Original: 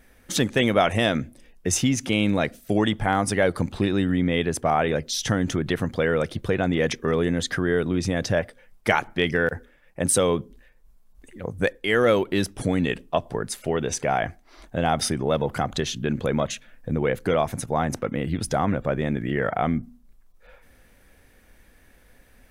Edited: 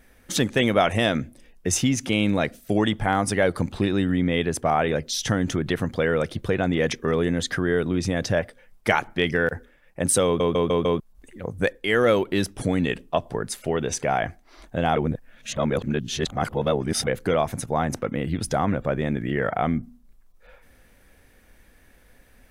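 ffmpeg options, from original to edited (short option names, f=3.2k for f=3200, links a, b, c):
-filter_complex "[0:a]asplit=8[a][b][c][d][e][f][g][h];[a]atrim=end=10.402[i];[b]atrim=start=10.248:end=10.402[j];[c]atrim=start=10.248:end=10.402[k];[d]atrim=start=10.248:end=10.402[l];[e]atrim=start=10.248:end=10.402[m];[f]atrim=start=10.998:end=14.962[n];[g]atrim=start=14.958:end=17.072,asetpts=PTS-STARTPTS,areverse[o];[h]atrim=start=17.068[p];[i][j]acrossfade=d=0.004:c1=hsin:c2=hsin[q];[q][k]acrossfade=d=0.004:c1=hsin:c2=hsin[r];[r][l]acrossfade=d=0.004:c1=hsin:c2=hsin[s];[s][m]acrossfade=d=0.004:c1=hsin:c2=hsin[t];[t][n]acrossfade=d=0.004:c1=hsin:c2=hsin[u];[u][o]acrossfade=d=0.004:c1=hsin:c2=hsin[v];[v][p]acrossfade=d=0.004:c1=hsin:c2=hsin"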